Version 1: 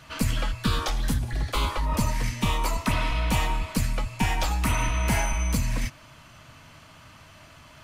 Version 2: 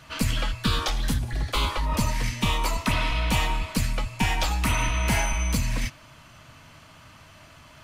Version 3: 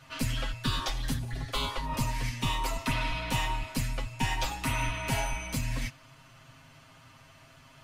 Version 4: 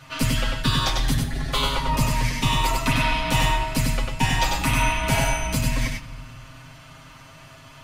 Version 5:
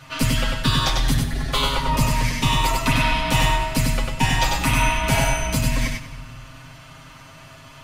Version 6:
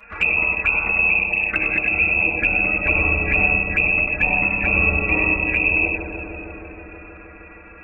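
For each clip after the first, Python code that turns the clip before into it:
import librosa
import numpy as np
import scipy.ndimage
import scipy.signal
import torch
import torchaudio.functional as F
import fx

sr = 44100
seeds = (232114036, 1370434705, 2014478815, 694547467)

y1 = fx.dynamic_eq(x, sr, hz=3400.0, q=0.84, threshold_db=-42.0, ratio=4.0, max_db=4)
y2 = y1 + 0.79 * np.pad(y1, (int(7.5 * sr / 1000.0), 0))[:len(y1)]
y2 = y2 * librosa.db_to_amplitude(-7.5)
y3 = y2 + 10.0 ** (-3.5 / 20.0) * np.pad(y2, (int(97 * sr / 1000.0), 0))[:len(y2)]
y3 = fx.room_shoebox(y3, sr, seeds[0], volume_m3=1600.0, walls='mixed', distance_m=0.44)
y3 = y3 * librosa.db_to_amplitude(7.5)
y4 = y3 + 10.0 ** (-17.0 / 20.0) * np.pad(y3, (int(194 * sr / 1000.0), 0))[:len(y3)]
y4 = y4 * librosa.db_to_amplitude(2.0)
y5 = fx.freq_invert(y4, sr, carrier_hz=2600)
y5 = fx.env_flanger(y5, sr, rest_ms=5.1, full_db=-17.0)
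y5 = fx.echo_bbd(y5, sr, ms=157, stages=1024, feedback_pct=83, wet_db=-5)
y5 = y5 * librosa.db_to_amplitude(2.5)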